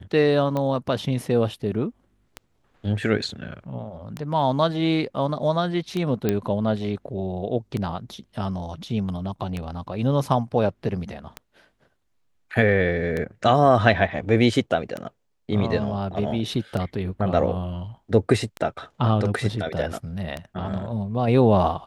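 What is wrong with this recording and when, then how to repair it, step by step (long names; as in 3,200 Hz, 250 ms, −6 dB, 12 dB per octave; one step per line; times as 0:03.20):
scratch tick 33 1/3 rpm −15 dBFS
0:06.29: click −9 dBFS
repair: click removal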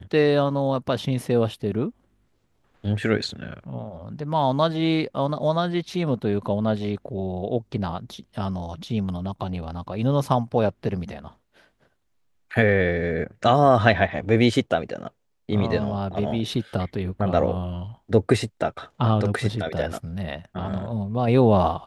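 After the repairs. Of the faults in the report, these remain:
none of them is left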